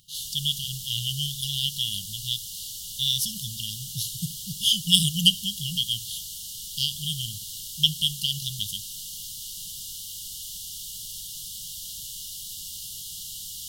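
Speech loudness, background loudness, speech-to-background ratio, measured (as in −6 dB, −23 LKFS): −25.5 LKFS, −34.5 LKFS, 9.0 dB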